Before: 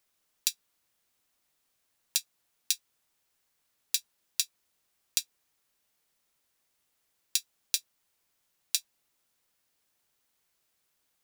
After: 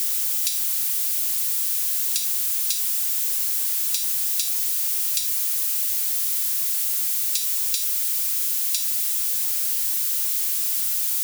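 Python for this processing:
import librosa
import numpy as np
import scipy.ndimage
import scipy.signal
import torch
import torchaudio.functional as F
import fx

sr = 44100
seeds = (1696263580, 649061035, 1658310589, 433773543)

y = x + 0.5 * 10.0 ** (-20.0 / 20.0) * np.diff(np.sign(x), prepend=np.sign(x[:1]))
y = scipy.signal.sosfilt(scipy.signal.butter(2, 550.0, 'highpass', fs=sr, output='sos'), y)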